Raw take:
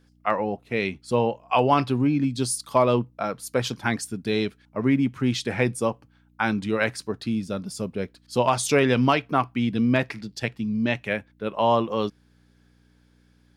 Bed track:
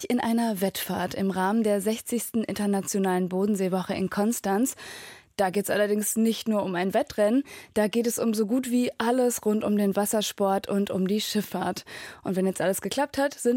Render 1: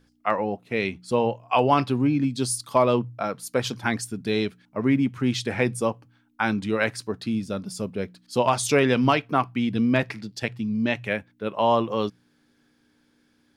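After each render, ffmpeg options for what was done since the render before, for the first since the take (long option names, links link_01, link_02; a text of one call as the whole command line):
ffmpeg -i in.wav -af "bandreject=frequency=60:width_type=h:width=4,bandreject=frequency=120:width_type=h:width=4,bandreject=frequency=180:width_type=h:width=4" out.wav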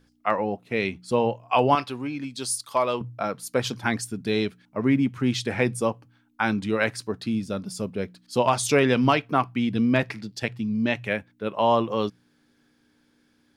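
ffmpeg -i in.wav -filter_complex "[0:a]asettb=1/sr,asplit=3[link_01][link_02][link_03];[link_01]atrim=end=1.754[link_04];[link_02]atrim=start=1.75:end=3.01,asetpts=PTS-STARTPTS,afade=type=in:duration=0.004:curve=qsin,afade=type=out:start_time=1.256:duration=0.004:curve=qsin,equalizer=frequency=140:width=0.37:gain=-13[link_05];[link_03]atrim=start=3.006[link_06];[link_04][link_05]acrossfade=duration=0.004:curve1=hsin:curve2=qsin[link_07];[link_07][link_06]acrossfade=duration=0.004:curve1=qsin:curve2=hsin" out.wav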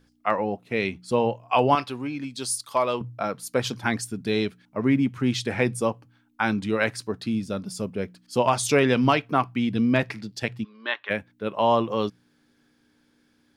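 ffmpeg -i in.wav -filter_complex "[0:a]asettb=1/sr,asplit=3[link_01][link_02][link_03];[link_01]atrim=end=7.854[link_04];[link_02]atrim=start=7.85:end=8.56,asetpts=PTS-STARTPTS,afade=type=in:duration=0.004:curve=qsin,afade=type=out:start_time=0.706:duration=0.004:curve=qsin,equalizer=frequency=3900:width=5.9:gain=-6[link_05];[link_03]atrim=start=8.556[link_06];[link_04][link_05]acrossfade=duration=0.004:curve1=hsin:curve2=qsin[link_07];[link_07][link_06]acrossfade=duration=0.004:curve1=qsin:curve2=hsin,asplit=3[link_08][link_09][link_10];[link_08]afade=type=out:start_time=10.63:duration=0.02[link_11];[link_09]highpass=frequency=450:width=0.5412,highpass=frequency=450:width=1.3066,equalizer=frequency=490:width_type=q:width=4:gain=-7,equalizer=frequency=690:width_type=q:width=4:gain=-9,equalizer=frequency=1100:width_type=q:width=4:gain=10,equalizer=frequency=1600:width_type=q:width=4:gain=6,equalizer=frequency=2400:width_type=q:width=4:gain=-6,equalizer=frequency=3600:width_type=q:width=4:gain=8,lowpass=frequency=3700:width=0.5412,lowpass=frequency=3700:width=1.3066,afade=type=in:start_time=10.63:duration=0.02,afade=type=out:start_time=11.09:duration=0.02[link_12];[link_10]afade=type=in:start_time=11.09:duration=0.02[link_13];[link_11][link_12][link_13]amix=inputs=3:normalize=0" out.wav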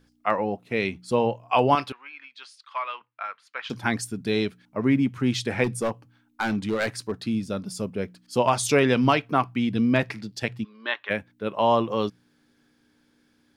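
ffmpeg -i in.wav -filter_complex "[0:a]asettb=1/sr,asplit=3[link_01][link_02][link_03];[link_01]atrim=end=1.924[link_04];[link_02]atrim=start=1.92:end=3.7,asetpts=PTS-STARTPTS,afade=type=in:duration=0.004:curve=qsin,afade=type=out:start_time=1.776:duration=0.004:curve=qsin,asuperpass=centerf=1800:order=4:qfactor=1[link_05];[link_03]atrim=start=3.696[link_06];[link_04][link_05]acrossfade=duration=0.004:curve1=hsin:curve2=qsin[link_07];[link_07][link_06]acrossfade=duration=0.004:curve1=qsin:curve2=hsin,asettb=1/sr,asplit=3[link_08][link_09][link_10];[link_08]atrim=end=5.644[link_11];[link_09]atrim=start=5.64:end=7.16,asetpts=PTS-STARTPTS,afade=type=in:duration=0.004:curve=qsin,afade=type=out:start_time=1.516:duration=0.004:curve=qsin,asoftclip=type=hard:threshold=-20dB[link_12];[link_10]atrim=start=7.156[link_13];[link_11][link_12]acrossfade=duration=0.004:curve1=hsin:curve2=qsin[link_14];[link_14][link_13]acrossfade=duration=0.004:curve1=qsin:curve2=hsin" out.wav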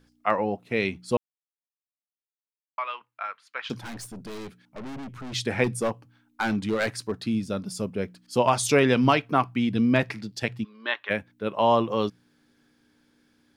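ffmpeg -i in.wav -filter_complex "[0:a]asettb=1/sr,asplit=3[link_01][link_02][link_03];[link_01]atrim=end=3.814[link_04];[link_02]atrim=start=3.81:end=5.33,asetpts=PTS-STARTPTS,afade=type=in:duration=0.004:curve=qsin,afade=type=out:start_time=1.516:duration=0.004:curve=qsin,aeval=exprs='(tanh(63.1*val(0)+0.4)-tanh(0.4))/63.1':channel_layout=same[link_05];[link_03]atrim=start=5.326[link_06];[link_04][link_05]acrossfade=duration=0.004:curve1=hsin:curve2=qsin[link_07];[link_07][link_06]acrossfade=duration=0.004:curve1=qsin:curve2=hsin,asplit=3[link_08][link_09][link_10];[link_08]atrim=end=1.17,asetpts=PTS-STARTPTS,afade=type=out:start_time=1.166:duration=0.004:curve=hsin[link_11];[link_09]atrim=start=1.17:end=2.78,asetpts=PTS-STARTPTS,volume=0[link_12];[link_10]atrim=start=2.78,asetpts=PTS-STARTPTS,afade=type=in:duration=0.004:curve=hsin[link_13];[link_11][link_12][link_13]concat=n=3:v=0:a=1" out.wav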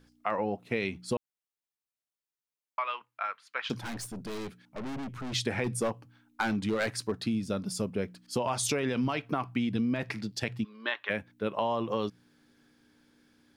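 ffmpeg -i in.wav -af "alimiter=limit=-13.5dB:level=0:latency=1:release=36,acompressor=threshold=-26dB:ratio=6" out.wav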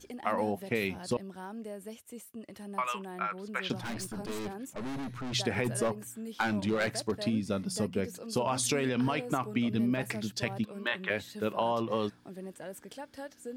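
ffmpeg -i in.wav -i bed.wav -filter_complex "[1:a]volume=-18dB[link_01];[0:a][link_01]amix=inputs=2:normalize=0" out.wav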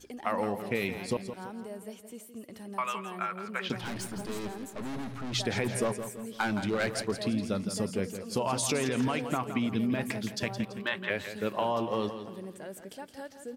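ffmpeg -i in.wav -af "aecho=1:1:167|334|501|668:0.316|0.133|0.0558|0.0234" out.wav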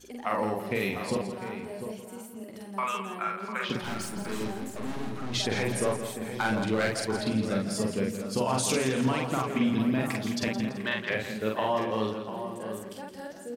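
ffmpeg -i in.wav -filter_complex "[0:a]asplit=2[link_01][link_02];[link_02]adelay=46,volume=-2dB[link_03];[link_01][link_03]amix=inputs=2:normalize=0,asplit=2[link_04][link_05];[link_05]adelay=699.7,volume=-9dB,highshelf=frequency=4000:gain=-15.7[link_06];[link_04][link_06]amix=inputs=2:normalize=0" out.wav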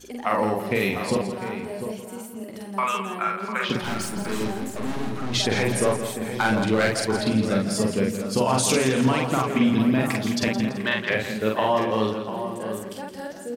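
ffmpeg -i in.wav -af "volume=6dB" out.wav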